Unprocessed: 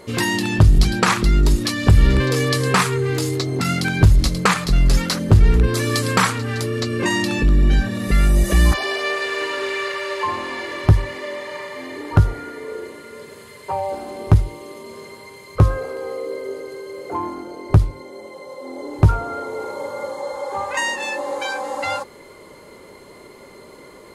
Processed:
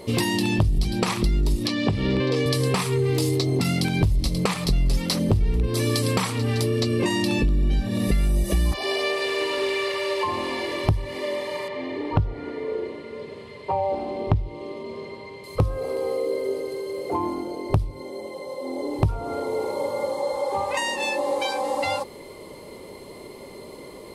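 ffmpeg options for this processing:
ffmpeg -i in.wav -filter_complex "[0:a]asettb=1/sr,asplit=3[link_01][link_02][link_03];[link_01]atrim=end=1.674[link_04];[link_02]atrim=start=1.67:end=2.46,asetpts=PTS-STARTPTS,afade=type=in:duration=0.004:curve=qsin,afade=type=out:start_time=0.786:duration=0.004:curve=qsin,highpass=160,lowpass=4400[link_05];[link_03]atrim=start=2.456[link_06];[link_04][link_05]acrossfade=duration=0.004:curve1=hsin:curve2=qsin[link_07];[link_07][link_06]acrossfade=duration=0.004:curve1=qsin:curve2=hsin,asettb=1/sr,asplit=3[link_08][link_09][link_10];[link_08]atrim=end=11.684[link_11];[link_09]atrim=start=11.68:end=15.44,asetpts=PTS-STARTPTS,afade=type=in:duration=0.004:curve=qsin,afade=type=out:start_time=3.756:duration=0.004:curve=qsin,lowpass=3300[link_12];[link_10]atrim=start=15.436[link_13];[link_11][link_12]acrossfade=duration=0.004:curve1=hsin:curve2=qsin[link_14];[link_14][link_13]acrossfade=duration=0.004:curve1=qsin:curve2=hsin,equalizer=frequency=6800:width=5.6:gain=-8,acompressor=threshold=-21dB:ratio=6,equalizer=frequency=1500:width=2.2:gain=-13,volume=3dB" out.wav

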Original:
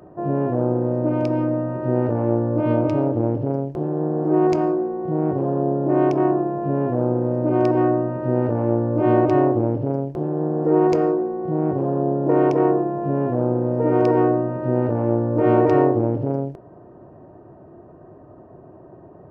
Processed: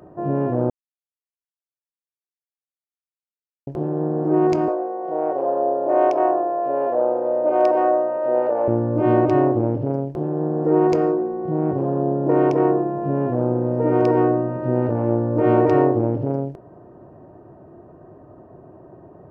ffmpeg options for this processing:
ffmpeg -i in.wav -filter_complex "[0:a]asettb=1/sr,asplit=3[link_01][link_02][link_03];[link_01]atrim=end=4.684[link_04];[link_02]atrim=start=4.68:end=8.68,asetpts=PTS-STARTPTS,afade=type=in:duration=0.004:curve=qsin,afade=type=out:start_time=3.996:duration=0.004:curve=qsin,highpass=frequency=590:width_type=q:width=2.4[link_05];[link_03]atrim=start=8.676[link_06];[link_04][link_05]acrossfade=duration=0.004:curve1=hsin:curve2=qsin[link_07];[link_07][link_06]acrossfade=duration=0.004:curve1=qsin:curve2=hsin,asplit=3[link_08][link_09][link_10];[link_08]atrim=end=0.7,asetpts=PTS-STARTPTS,afade=type=out:start_time=0.696:duration=0.004:curve=hsin[link_11];[link_09]atrim=start=0.7:end=3.67,asetpts=PTS-STARTPTS,volume=0[link_12];[link_10]atrim=start=3.67,asetpts=PTS-STARTPTS,afade=type=in:duration=0.004:curve=hsin[link_13];[link_11][link_12][link_13]concat=n=3:v=0:a=1" out.wav

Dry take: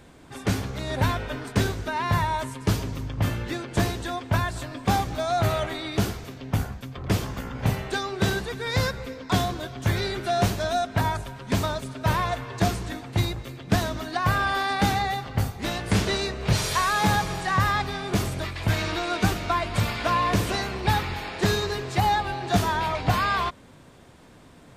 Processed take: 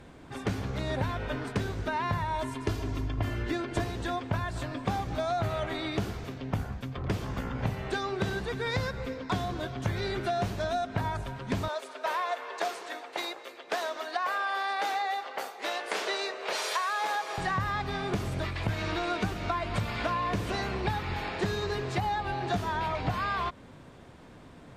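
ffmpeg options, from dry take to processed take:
ffmpeg -i in.wav -filter_complex "[0:a]asettb=1/sr,asplit=3[link_01][link_02][link_03];[link_01]atrim=end=2.354[link_04];[link_02]atrim=start=2.35:end=3.84,asetpts=PTS-STARTPTS,afade=type=in:duration=0.004:curve=qsin,afade=type=out:start_time=1.486:duration=0.004:curve=qsin,aecho=1:1:2.9:0.65,atrim=end_sample=65709[link_05];[link_03]atrim=start=3.836[link_06];[link_04][link_05]acrossfade=duration=0.004:curve1=hsin:curve2=qsin[link_07];[link_07][link_06]acrossfade=duration=0.004:curve1=qsin:curve2=hsin,asettb=1/sr,asplit=3[link_08][link_09][link_10];[link_08]atrim=end=11.684[link_11];[link_09]atrim=start=11.68:end=17.38,asetpts=PTS-STARTPTS,afade=type=in:duration=0.004:curve=qsin,afade=type=out:start_time=5.696:duration=0.004:curve=qsin,highpass=frequency=450:width=0.5412,highpass=frequency=450:width=1.3066[link_12];[link_10]atrim=start=17.376[link_13];[link_11][link_12]acrossfade=duration=0.004:curve1=hsin:curve2=qsin[link_14];[link_14][link_13]acrossfade=duration=0.004:curve1=qsin:curve2=hsin,aemphasis=mode=reproduction:type=cd,acompressor=threshold=-27dB:ratio=6" out.wav

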